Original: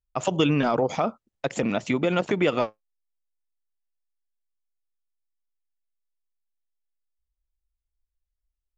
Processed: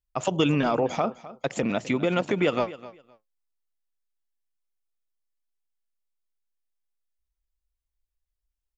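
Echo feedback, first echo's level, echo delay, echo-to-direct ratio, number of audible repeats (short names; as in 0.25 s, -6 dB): 19%, -17.0 dB, 0.257 s, -17.0 dB, 2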